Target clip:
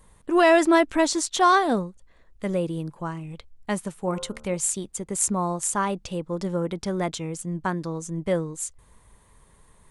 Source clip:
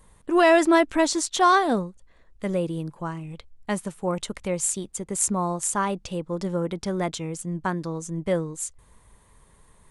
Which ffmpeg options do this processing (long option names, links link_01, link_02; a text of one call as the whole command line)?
ffmpeg -i in.wav -filter_complex "[0:a]asettb=1/sr,asplit=3[link_01][link_02][link_03];[link_01]atrim=end=4.004[link_04];[link_02]atrim=start=4:end=4.57,asetpts=PTS-STARTPTS,afade=type=in:duration=0.004:curve=qsin,afade=type=out:start_time=0.566:duration=0.004:curve=qsin,bandreject=frequency=75.03:width_type=h:width=4,bandreject=frequency=150.06:width_type=h:width=4,bandreject=frequency=225.09:width_type=h:width=4,bandreject=frequency=300.12:width_type=h:width=4,bandreject=frequency=375.15:width_type=h:width=4,bandreject=frequency=450.18:width_type=h:width=4,bandreject=frequency=525.21:width_type=h:width=4,bandreject=frequency=600.24:width_type=h:width=4,bandreject=frequency=675.27:width_type=h:width=4,bandreject=frequency=750.3:width_type=h:width=4,bandreject=frequency=825.33:width_type=h:width=4,bandreject=frequency=900.36:width_type=h:width=4,bandreject=frequency=975.39:width_type=h:width=4,bandreject=frequency=1050.42:width_type=h:width=4,bandreject=frequency=1125.45:width_type=h:width=4,bandreject=frequency=1200.48:width_type=h:width=4,bandreject=frequency=1275.51:width_type=h:width=4,bandreject=frequency=1350.54:width_type=h:width=4,bandreject=frequency=1425.57:width_type=h:width=4,bandreject=frequency=1500.6:width_type=h:width=4[link_05];[link_03]atrim=start=4.566[link_06];[link_04][link_05]acrossfade=duration=0.004:curve1=hsin:curve2=qsin[link_07];[link_07][link_06]acrossfade=duration=0.004:curve1=qsin:curve2=hsin" out.wav